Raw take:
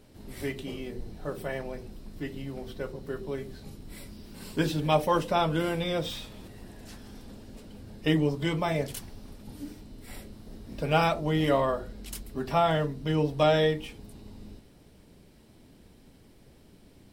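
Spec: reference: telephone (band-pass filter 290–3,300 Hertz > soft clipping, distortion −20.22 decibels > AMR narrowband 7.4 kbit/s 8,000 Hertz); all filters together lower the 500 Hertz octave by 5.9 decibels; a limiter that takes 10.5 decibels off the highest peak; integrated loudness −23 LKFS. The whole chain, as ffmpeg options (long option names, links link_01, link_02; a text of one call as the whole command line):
ffmpeg -i in.wav -af "equalizer=frequency=500:width_type=o:gain=-7,alimiter=limit=-23.5dB:level=0:latency=1,highpass=290,lowpass=3300,asoftclip=threshold=-26dB,volume=17dB" -ar 8000 -c:a libopencore_amrnb -b:a 7400 out.amr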